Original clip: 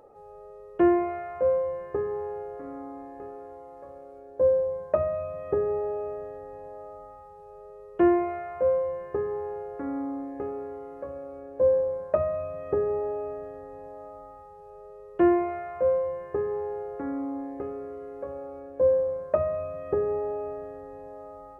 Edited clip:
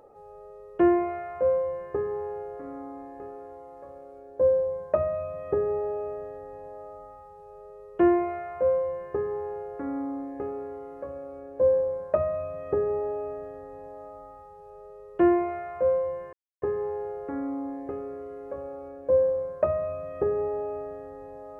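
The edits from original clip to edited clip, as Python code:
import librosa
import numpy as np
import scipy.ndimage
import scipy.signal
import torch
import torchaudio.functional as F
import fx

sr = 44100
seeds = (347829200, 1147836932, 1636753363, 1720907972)

y = fx.edit(x, sr, fx.insert_silence(at_s=16.33, length_s=0.29), tone=tone)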